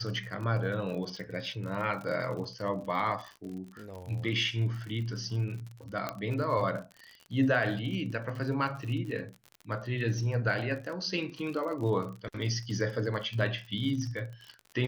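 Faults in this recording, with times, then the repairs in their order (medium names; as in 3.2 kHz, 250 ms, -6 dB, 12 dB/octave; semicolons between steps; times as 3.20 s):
crackle 57 per s -38 dBFS
6.09 s: pop -18 dBFS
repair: de-click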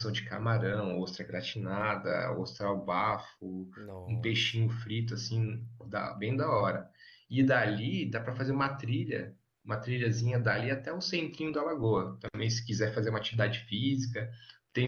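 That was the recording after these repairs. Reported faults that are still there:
nothing left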